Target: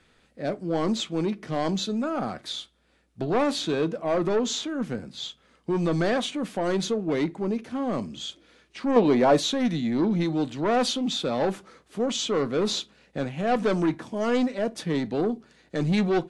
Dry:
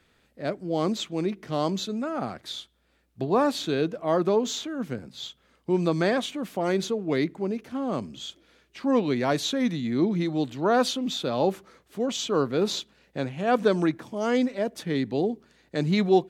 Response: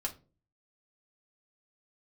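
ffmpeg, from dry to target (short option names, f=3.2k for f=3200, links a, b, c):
-filter_complex "[0:a]asoftclip=type=tanh:threshold=-21dB,asettb=1/sr,asplit=3[a][b][c];[a]atrim=end=8.964[d];[b]atrim=start=8.96:end=9.39,asetpts=PTS-STARTPTS,afade=t=in:d=0.004:c=qsin,afade=t=out:st=0.426:d=0.004:c=qsin,equalizer=f=550:w=0.57:g=7.5[e];[c]atrim=start=9.386[f];[d][e]acrossfade=d=0.004:c1=hsin:c2=qsin[g];[g][f]acrossfade=d=0.004:c1=qsin:c2=hsin,asplit=2[h][i];[1:a]atrim=start_sample=2205,atrim=end_sample=3087[j];[i][j]afir=irnorm=-1:irlink=0,volume=-7.5dB[k];[h][k]amix=inputs=2:normalize=0" -ar 24000 -c:a aac -b:a 96k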